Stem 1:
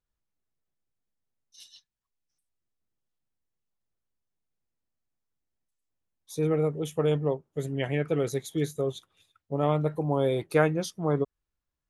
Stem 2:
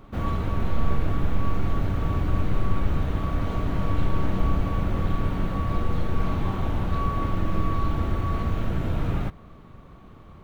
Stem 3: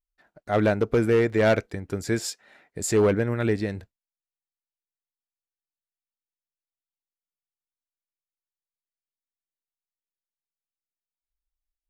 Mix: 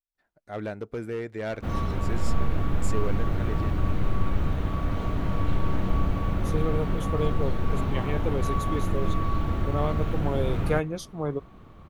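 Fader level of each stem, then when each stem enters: -3.5, -1.5, -12.0 dB; 0.15, 1.50, 0.00 s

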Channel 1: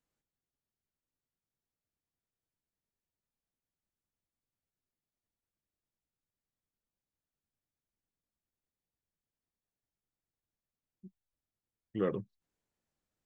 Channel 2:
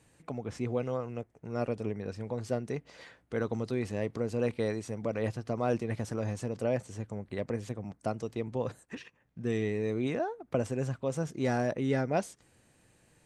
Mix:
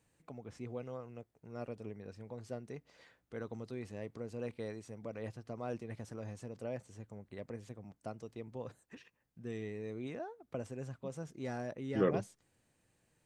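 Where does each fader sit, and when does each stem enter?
+1.5, -11.0 dB; 0.00, 0.00 s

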